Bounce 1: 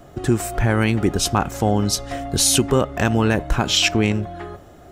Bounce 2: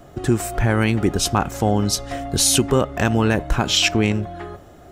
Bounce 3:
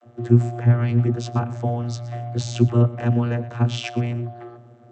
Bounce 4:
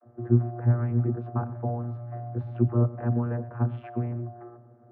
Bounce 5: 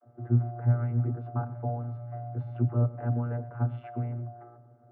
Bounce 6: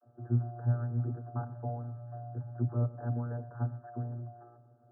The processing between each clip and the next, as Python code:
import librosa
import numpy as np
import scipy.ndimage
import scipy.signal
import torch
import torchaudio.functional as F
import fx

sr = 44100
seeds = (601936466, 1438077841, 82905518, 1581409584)

y1 = x
y2 = y1 + 10.0 ** (-18.0 / 20.0) * np.pad(y1, (int(120 * sr / 1000.0), 0))[:len(y1)]
y2 = fx.vocoder(y2, sr, bands=32, carrier='saw', carrier_hz=119.0)
y3 = scipy.signal.sosfilt(scipy.signal.butter(4, 1500.0, 'lowpass', fs=sr, output='sos'), y2)
y3 = y3 * 10.0 ** (-6.0 / 20.0)
y4 = y3 + 0.55 * np.pad(y3, (int(7.0 * sr / 1000.0), 0))[:len(y3)]
y4 = y4 * 10.0 ** (-4.5 / 20.0)
y5 = fx.brickwall_lowpass(y4, sr, high_hz=1800.0)
y5 = y5 * 10.0 ** (-5.0 / 20.0)